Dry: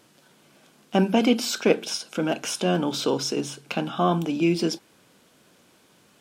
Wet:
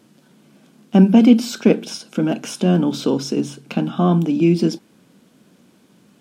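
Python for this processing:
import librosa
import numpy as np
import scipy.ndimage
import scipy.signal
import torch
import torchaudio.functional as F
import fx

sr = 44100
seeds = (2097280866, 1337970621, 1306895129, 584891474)

y = fx.peak_eq(x, sr, hz=210.0, db=13.5, octaves=1.5)
y = F.gain(torch.from_numpy(y), -1.5).numpy()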